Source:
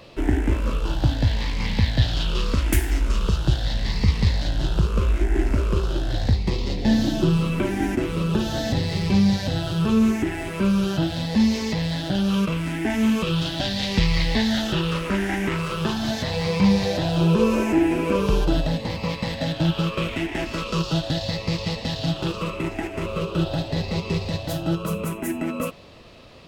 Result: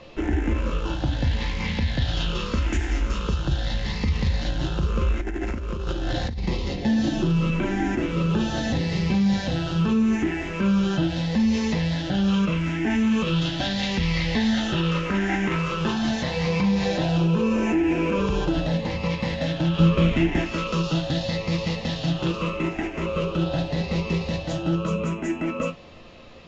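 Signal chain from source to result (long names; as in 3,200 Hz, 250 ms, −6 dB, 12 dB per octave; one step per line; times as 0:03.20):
parametric band 4,800 Hz −5 dB 0.47 octaves
convolution reverb RT60 0.20 s, pre-delay 4 ms, DRR 5 dB
brickwall limiter −13.5 dBFS, peak gain reduction 8.5 dB
Chebyshev low-pass filter 7,100 Hz, order 6
0:05.21–0:06.46: compressor whose output falls as the input rises −27 dBFS, ratio −1
0:19.80–0:20.42: low-shelf EQ 280 Hz +10.5 dB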